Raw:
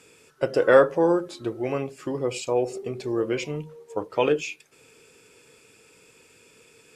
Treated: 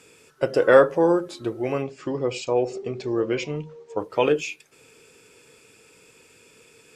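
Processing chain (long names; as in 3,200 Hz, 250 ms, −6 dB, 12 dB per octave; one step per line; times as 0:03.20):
0:01.82–0:04.00: low-pass filter 6,800 Hz 24 dB per octave
level +1.5 dB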